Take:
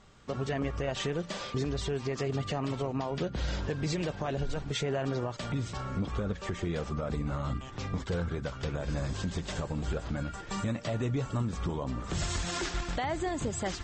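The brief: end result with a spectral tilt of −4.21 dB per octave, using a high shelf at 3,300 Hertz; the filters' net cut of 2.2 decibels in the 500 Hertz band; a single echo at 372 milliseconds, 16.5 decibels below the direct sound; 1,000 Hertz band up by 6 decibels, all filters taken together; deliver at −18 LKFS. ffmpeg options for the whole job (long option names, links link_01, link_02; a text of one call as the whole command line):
ffmpeg -i in.wav -af "equalizer=frequency=500:width_type=o:gain=-5.5,equalizer=frequency=1000:width_type=o:gain=9,highshelf=frequency=3300:gain=7.5,aecho=1:1:372:0.15,volume=14.5dB" out.wav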